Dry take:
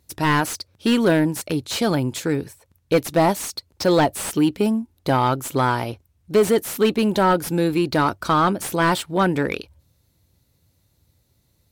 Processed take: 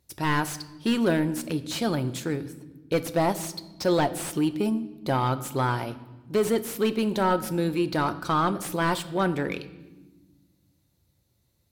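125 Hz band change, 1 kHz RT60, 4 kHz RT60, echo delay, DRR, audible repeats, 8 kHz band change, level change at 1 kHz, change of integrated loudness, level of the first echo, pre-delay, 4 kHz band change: −4.5 dB, 1.1 s, 0.95 s, no echo audible, 11.0 dB, no echo audible, −6.5 dB, −6.0 dB, −6.0 dB, no echo audible, 5 ms, −6.0 dB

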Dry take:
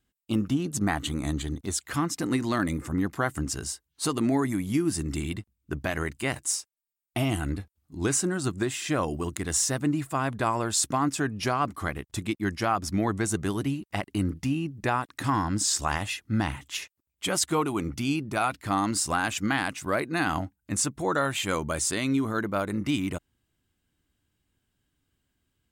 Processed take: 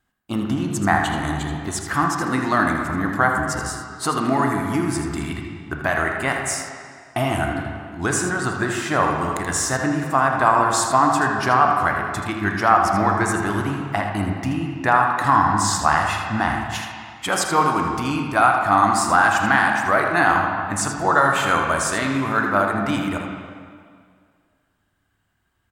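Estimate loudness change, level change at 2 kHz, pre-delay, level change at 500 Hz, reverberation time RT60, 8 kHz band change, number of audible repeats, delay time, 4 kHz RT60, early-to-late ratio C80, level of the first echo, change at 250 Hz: +8.0 dB, +12.0 dB, 17 ms, +7.5 dB, 2.0 s, +2.0 dB, 1, 80 ms, 1.7 s, 3.0 dB, −9.0 dB, +4.0 dB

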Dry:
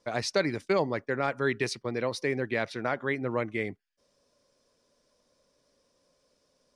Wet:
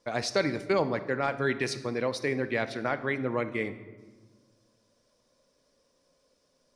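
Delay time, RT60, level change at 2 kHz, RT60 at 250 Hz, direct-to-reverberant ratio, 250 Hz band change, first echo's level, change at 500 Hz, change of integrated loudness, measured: no echo audible, 1.3 s, 0.0 dB, 2.0 s, 11.0 dB, +1.0 dB, no echo audible, 0.0 dB, +0.5 dB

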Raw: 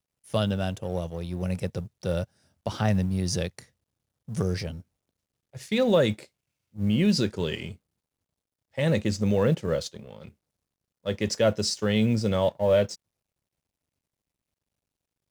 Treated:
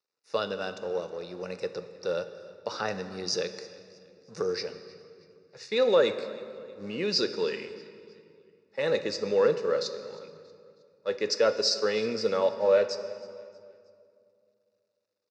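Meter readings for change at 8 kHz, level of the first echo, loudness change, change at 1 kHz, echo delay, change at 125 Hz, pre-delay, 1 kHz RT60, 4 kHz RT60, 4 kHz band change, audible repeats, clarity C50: −3.0 dB, −22.0 dB, −2.0 dB, 0.0 dB, 317 ms, −19.0 dB, 3 ms, 2.1 s, 1.9 s, +1.5 dB, 2, 11.0 dB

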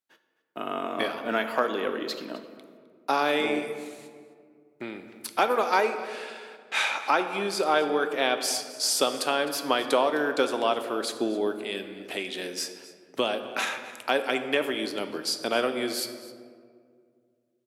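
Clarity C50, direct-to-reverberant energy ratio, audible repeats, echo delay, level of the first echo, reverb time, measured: 9.5 dB, 7.5 dB, 1, 259 ms, −18.5 dB, 2.1 s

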